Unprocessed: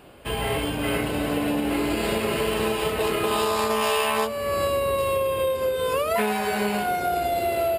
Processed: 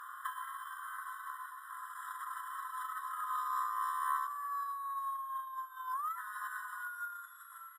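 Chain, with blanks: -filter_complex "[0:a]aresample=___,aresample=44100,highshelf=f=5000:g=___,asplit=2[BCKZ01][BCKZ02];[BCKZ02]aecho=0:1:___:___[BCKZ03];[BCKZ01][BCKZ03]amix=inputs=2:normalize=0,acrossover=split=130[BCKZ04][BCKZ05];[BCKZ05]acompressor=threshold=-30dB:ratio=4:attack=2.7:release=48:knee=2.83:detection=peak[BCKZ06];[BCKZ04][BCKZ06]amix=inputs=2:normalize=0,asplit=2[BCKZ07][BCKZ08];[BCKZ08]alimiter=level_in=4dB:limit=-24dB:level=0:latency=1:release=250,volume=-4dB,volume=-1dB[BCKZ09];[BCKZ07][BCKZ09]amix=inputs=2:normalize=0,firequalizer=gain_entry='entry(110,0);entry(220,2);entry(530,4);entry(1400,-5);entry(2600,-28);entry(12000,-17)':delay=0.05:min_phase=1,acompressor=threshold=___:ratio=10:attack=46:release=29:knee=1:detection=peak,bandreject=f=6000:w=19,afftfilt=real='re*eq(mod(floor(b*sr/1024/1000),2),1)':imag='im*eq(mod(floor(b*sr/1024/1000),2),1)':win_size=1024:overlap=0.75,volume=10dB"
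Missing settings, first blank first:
32000, 10, 441, 0.0794, -40dB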